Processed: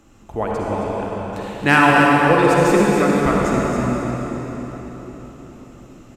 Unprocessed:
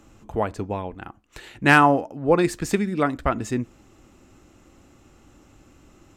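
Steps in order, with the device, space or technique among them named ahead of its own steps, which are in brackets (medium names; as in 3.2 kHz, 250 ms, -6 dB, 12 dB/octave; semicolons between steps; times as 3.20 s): cave (delay 270 ms -8.5 dB; reverberation RT60 4.7 s, pre-delay 47 ms, DRR -4 dB)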